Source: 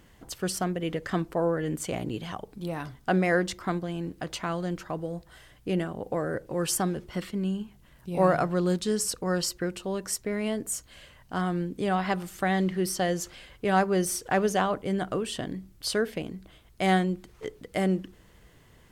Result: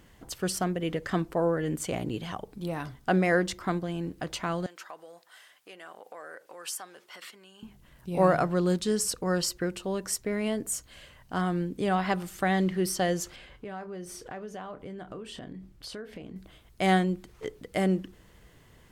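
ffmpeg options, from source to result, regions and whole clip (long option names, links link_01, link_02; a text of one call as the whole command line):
ffmpeg -i in.wav -filter_complex "[0:a]asettb=1/sr,asplit=3[link_01][link_02][link_03];[link_01]atrim=end=4.664[link_04];[link_02]atrim=start=4.66:end=7.63,asetpts=PTS-STARTPTS,afade=type=in:duration=0.004:curve=qsin,afade=type=out:start_time=2.966:duration=0.004:curve=qsin,acompressor=threshold=-32dB:ratio=5:attack=3.2:release=140:knee=1:detection=peak,highpass=850[link_05];[link_03]atrim=start=7.626[link_06];[link_04][link_05]acrossfade=duration=0.004:curve1=hsin:curve2=qsin[link_07];[link_07][link_06]acrossfade=duration=0.004:curve1=qsin:curve2=hsin,asettb=1/sr,asplit=3[link_08][link_09][link_10];[link_08]atrim=end=13.364[link_11];[link_09]atrim=start=13.36:end=16.36,asetpts=PTS-STARTPTS,afade=type=in:duration=0.004:curve=qsin,afade=type=out:start_time=2.996:duration=0.004:curve=qsin,highshelf=frequency=5600:gain=-11.5,asplit=2[link_12][link_13];[link_13]adelay=28,volume=-12.5dB[link_14];[link_12][link_14]amix=inputs=2:normalize=0,atrim=end_sample=132300,acompressor=threshold=-39dB:ratio=4:attack=3.2:release=140:knee=1:detection=peak[link_15];[link_10]atrim=start=16.356[link_16];[link_11][link_15]acrossfade=duration=0.004:curve1=hsin:curve2=qsin[link_17];[link_17][link_16]acrossfade=duration=0.004:curve1=qsin:curve2=hsin" out.wav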